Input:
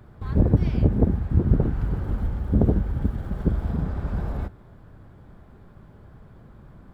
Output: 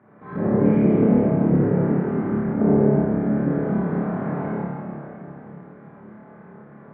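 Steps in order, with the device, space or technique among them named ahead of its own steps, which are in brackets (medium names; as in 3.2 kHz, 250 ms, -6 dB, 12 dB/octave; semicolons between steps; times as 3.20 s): tunnel (flutter echo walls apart 4.8 m, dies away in 0.57 s; reverberation RT60 3.3 s, pre-delay 30 ms, DRR -7.5 dB); elliptic band-pass 170–2100 Hz, stop band 60 dB; trim -2 dB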